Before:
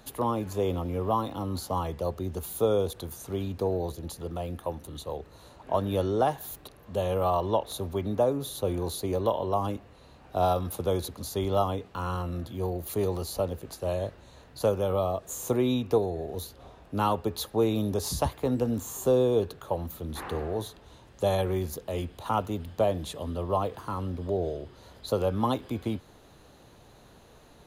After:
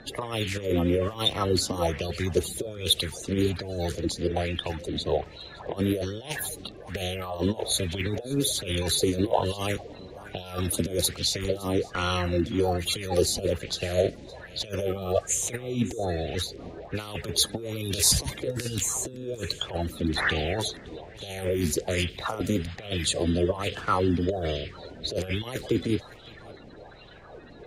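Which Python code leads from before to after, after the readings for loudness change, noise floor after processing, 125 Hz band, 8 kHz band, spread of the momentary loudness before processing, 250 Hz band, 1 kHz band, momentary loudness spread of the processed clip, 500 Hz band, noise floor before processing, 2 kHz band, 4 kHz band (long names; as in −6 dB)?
+2.0 dB, −46 dBFS, +2.0 dB, +11.5 dB, 11 LU, +2.5 dB, −3.5 dB, 12 LU, −1.0 dB, −54 dBFS, +11.5 dB, +12.5 dB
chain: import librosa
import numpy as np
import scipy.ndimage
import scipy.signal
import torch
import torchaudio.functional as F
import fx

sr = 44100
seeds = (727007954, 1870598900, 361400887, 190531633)

y = fx.spec_quant(x, sr, step_db=30)
y = fx.dynamic_eq(y, sr, hz=9100.0, q=0.84, threshold_db=-50.0, ratio=4.0, max_db=4)
y = fx.env_lowpass(y, sr, base_hz=2700.0, full_db=-25.0)
y = fx.over_compress(y, sr, threshold_db=-31.0, ratio=-0.5)
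y = fx.graphic_eq(y, sr, hz=(250, 1000, 2000, 4000, 8000), db=(-8, -12, 8, 3, 5))
y = y + 10.0 ** (-20.5 / 20.0) * np.pad(y, (int(564 * sr / 1000.0), 0))[:len(y)]
y = fx.bell_lfo(y, sr, hz=1.2, low_hz=230.0, high_hz=3300.0, db=13)
y = y * librosa.db_to_amplitude(5.0)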